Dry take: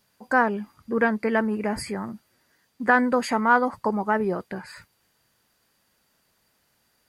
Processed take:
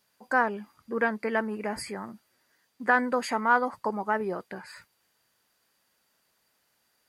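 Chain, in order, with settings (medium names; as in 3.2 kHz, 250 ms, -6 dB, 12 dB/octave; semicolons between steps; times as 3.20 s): bass shelf 220 Hz -10 dB; trim -3 dB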